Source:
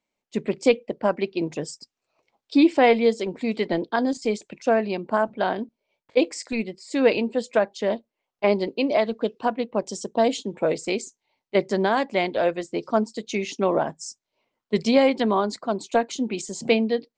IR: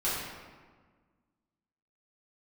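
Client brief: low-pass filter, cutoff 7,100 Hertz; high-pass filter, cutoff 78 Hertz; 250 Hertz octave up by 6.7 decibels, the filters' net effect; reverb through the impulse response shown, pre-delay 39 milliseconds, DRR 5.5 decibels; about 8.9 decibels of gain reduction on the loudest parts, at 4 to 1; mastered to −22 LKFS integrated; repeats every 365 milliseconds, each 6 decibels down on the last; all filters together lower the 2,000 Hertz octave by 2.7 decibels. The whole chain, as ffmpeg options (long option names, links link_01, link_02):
-filter_complex "[0:a]highpass=78,lowpass=7100,equalizer=frequency=250:width_type=o:gain=8,equalizer=frequency=2000:width_type=o:gain=-3.5,acompressor=threshold=-17dB:ratio=4,aecho=1:1:365|730|1095|1460|1825|2190:0.501|0.251|0.125|0.0626|0.0313|0.0157,asplit=2[link_01][link_02];[1:a]atrim=start_sample=2205,adelay=39[link_03];[link_02][link_03]afir=irnorm=-1:irlink=0,volume=-14.5dB[link_04];[link_01][link_04]amix=inputs=2:normalize=0"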